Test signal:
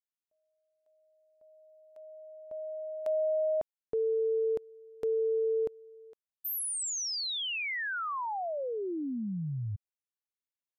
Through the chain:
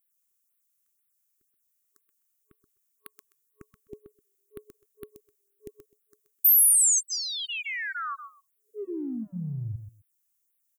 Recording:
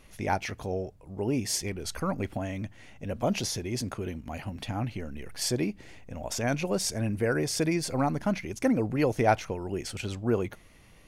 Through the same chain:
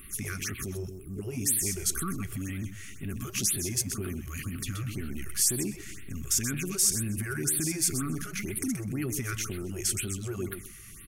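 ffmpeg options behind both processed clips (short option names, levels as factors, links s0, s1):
-af "afftfilt=real='re*(1-between(b*sr/4096,420,1100))':imag='im*(1-between(b*sr/4096,420,1100))':win_size=4096:overlap=0.75,acompressor=threshold=0.0126:ratio=3:attack=1.5:release=31:knee=6:detection=peak,aexciter=amount=5.8:drive=2.3:freq=6100,aecho=1:1:128|256:0.355|0.0568,afftfilt=real='re*(1-between(b*sr/1024,210*pow(6600/210,0.5+0.5*sin(2*PI*2*pts/sr))/1.41,210*pow(6600/210,0.5+0.5*sin(2*PI*2*pts/sr))*1.41))':imag='im*(1-between(b*sr/1024,210*pow(6600/210,0.5+0.5*sin(2*PI*2*pts/sr))/1.41,210*pow(6600/210,0.5+0.5*sin(2*PI*2*pts/sr))*1.41))':win_size=1024:overlap=0.75,volume=1.88"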